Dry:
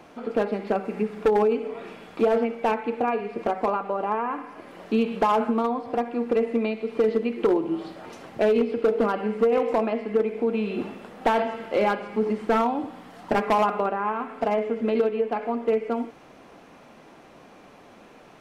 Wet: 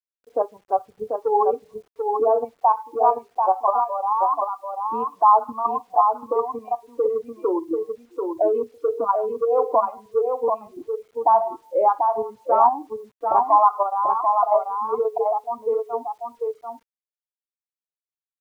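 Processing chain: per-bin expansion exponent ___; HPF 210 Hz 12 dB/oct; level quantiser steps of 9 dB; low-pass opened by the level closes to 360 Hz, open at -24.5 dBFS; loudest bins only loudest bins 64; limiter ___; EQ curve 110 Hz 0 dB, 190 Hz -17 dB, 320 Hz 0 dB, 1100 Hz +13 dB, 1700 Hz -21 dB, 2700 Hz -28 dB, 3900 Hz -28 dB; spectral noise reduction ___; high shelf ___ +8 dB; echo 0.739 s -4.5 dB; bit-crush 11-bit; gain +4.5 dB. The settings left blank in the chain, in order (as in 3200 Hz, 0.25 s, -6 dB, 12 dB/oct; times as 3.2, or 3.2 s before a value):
1.5, -20.5 dBFS, 18 dB, 4000 Hz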